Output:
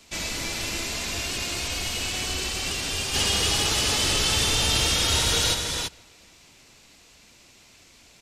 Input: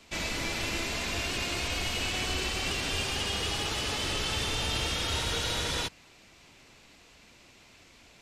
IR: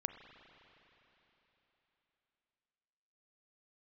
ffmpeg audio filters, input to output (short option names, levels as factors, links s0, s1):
-filter_complex "[0:a]bass=f=250:g=1,treble=f=4000:g=8,asplit=3[s0][s1][s2];[s0]afade=t=out:st=3.13:d=0.02[s3];[s1]acontrast=40,afade=t=in:st=3.13:d=0.02,afade=t=out:st=5.53:d=0.02[s4];[s2]afade=t=in:st=5.53:d=0.02[s5];[s3][s4][s5]amix=inputs=3:normalize=0,asplit=2[s6][s7];[s7]adelay=484,volume=0.0398,highshelf=f=4000:g=-10.9[s8];[s6][s8]amix=inputs=2:normalize=0"